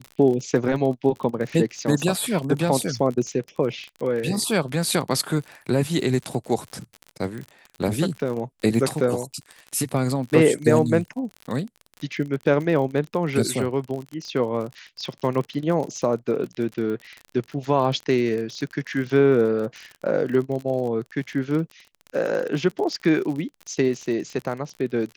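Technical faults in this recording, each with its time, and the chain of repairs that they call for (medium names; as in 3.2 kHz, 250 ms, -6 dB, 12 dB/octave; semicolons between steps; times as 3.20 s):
crackle 43 per s -30 dBFS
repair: de-click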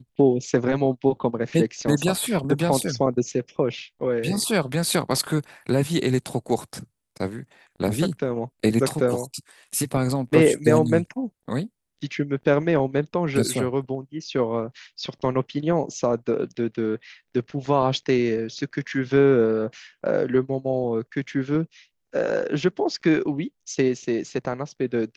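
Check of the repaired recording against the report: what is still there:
nothing left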